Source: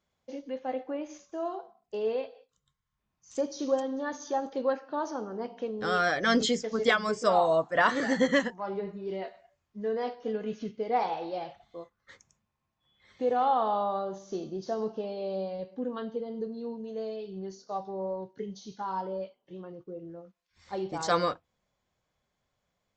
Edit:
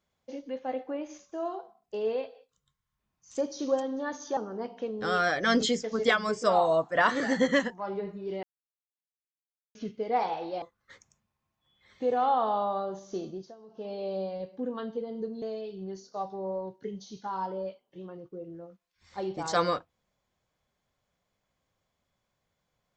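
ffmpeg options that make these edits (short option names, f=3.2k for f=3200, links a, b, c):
-filter_complex "[0:a]asplit=8[a][b][c][d][e][f][g][h];[a]atrim=end=4.372[i];[b]atrim=start=5.168:end=9.23,asetpts=PTS-STARTPTS,afade=t=out:st=4.058:d=0.004:c=hsin[j];[c]atrim=start=9.23:end=10.55,asetpts=PTS-STARTPTS,volume=0[k];[d]atrim=start=10.55:end=11.422,asetpts=PTS-STARTPTS,afade=t=in:d=0.004:c=hsin[l];[e]atrim=start=11.808:end=14.73,asetpts=PTS-STARTPTS,afade=t=out:st=2.662:d=0.26:silence=0.1[m];[f]atrim=start=14.73:end=14.87,asetpts=PTS-STARTPTS,volume=-20dB[n];[g]atrim=start=14.87:end=16.612,asetpts=PTS-STARTPTS,afade=t=in:d=0.26:silence=0.1[o];[h]atrim=start=16.968[p];[j][k][l]concat=n=3:v=0:a=1[q];[i][q]acrossfade=d=0.004:c1=hsin:c2=hsin[r];[m][n][o]concat=n=3:v=0:a=1[s];[r][s]acrossfade=d=0.004:c1=hsin:c2=hsin[t];[t][p]acrossfade=d=0.004:c1=hsin:c2=hsin"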